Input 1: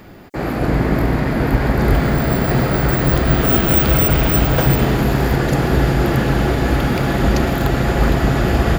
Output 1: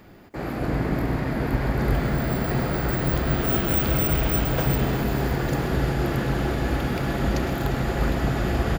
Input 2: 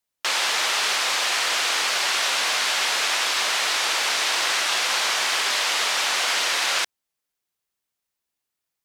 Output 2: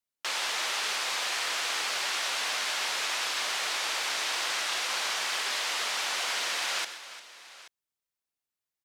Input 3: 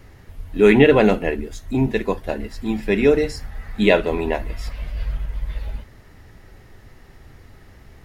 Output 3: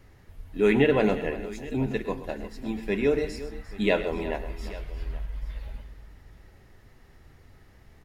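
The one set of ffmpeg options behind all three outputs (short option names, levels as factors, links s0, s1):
-af "aecho=1:1:104|127|350|831:0.15|0.188|0.178|0.119,volume=0.376"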